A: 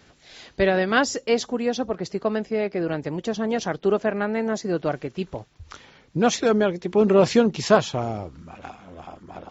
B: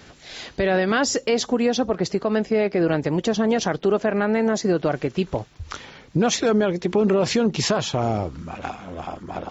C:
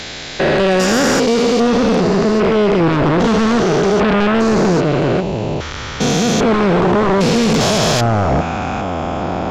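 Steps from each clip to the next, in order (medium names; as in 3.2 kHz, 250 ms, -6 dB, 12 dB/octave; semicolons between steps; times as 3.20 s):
in parallel at +2 dB: compression, threshold -26 dBFS, peak gain reduction 15 dB; on the sum: peak limiter -12.5 dBFS, peak gain reduction 12 dB; trim +1 dB
spectrogram pixelated in time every 400 ms; sine folder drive 9 dB, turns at -13 dBFS; trim +3.5 dB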